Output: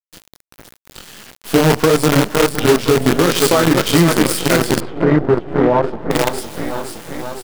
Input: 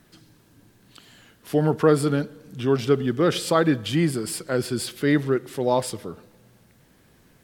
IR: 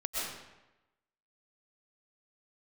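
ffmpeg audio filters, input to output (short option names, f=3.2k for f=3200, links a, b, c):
-filter_complex "[0:a]highpass=f=130:w=0.5412,highpass=f=130:w=1.3066,aecho=1:1:511|1022|1533|2044|2555|3066|3577:0.422|0.232|0.128|0.0702|0.0386|0.0212|0.0117,asplit=2[a][b];[b]acompressor=threshold=-33dB:ratio=8,volume=1.5dB[c];[a][c]amix=inputs=2:normalize=0,flanger=delay=17:depth=7.3:speed=1.5,dynaudnorm=f=100:g=5:m=3dB,asplit=2[d][e];[1:a]atrim=start_sample=2205,asetrate=29547,aresample=44100[f];[e][f]afir=irnorm=-1:irlink=0,volume=-26.5dB[g];[d][g]amix=inputs=2:normalize=0,acrusher=bits=4:dc=4:mix=0:aa=0.000001,asettb=1/sr,asplit=3[h][i][j];[h]atrim=end=4.804[k];[i]atrim=start=4.8:end=6.11,asetpts=PTS-STARTPTS,afade=t=in:d=0.004:c=qsin,afade=t=out:st=1.306:d=0.004:c=qsin,lowpass=1.2k[l];[j]atrim=start=6.106[m];[k][l]acrossfade=d=0.004:c1=hsin:c2=qsin[n];[n][m]acrossfade=d=0.004:c1=qsin:c2=hsin,alimiter=level_in=11dB:limit=-1dB:release=50:level=0:latency=1,volume=-3dB"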